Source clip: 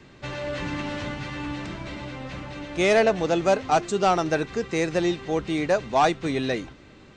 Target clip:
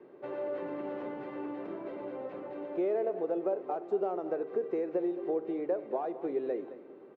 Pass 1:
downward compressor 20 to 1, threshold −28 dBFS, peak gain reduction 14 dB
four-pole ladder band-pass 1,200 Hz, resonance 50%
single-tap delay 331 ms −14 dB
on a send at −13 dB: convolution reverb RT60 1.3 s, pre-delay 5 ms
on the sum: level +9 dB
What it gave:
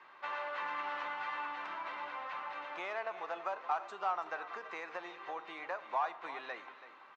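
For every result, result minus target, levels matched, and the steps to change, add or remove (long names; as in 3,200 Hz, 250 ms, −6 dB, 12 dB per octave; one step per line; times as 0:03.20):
echo 114 ms late; 1,000 Hz band +9.5 dB
change: single-tap delay 217 ms −14 dB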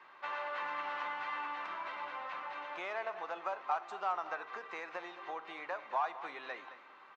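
1,000 Hz band +9.5 dB
change: four-pole ladder band-pass 480 Hz, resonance 50%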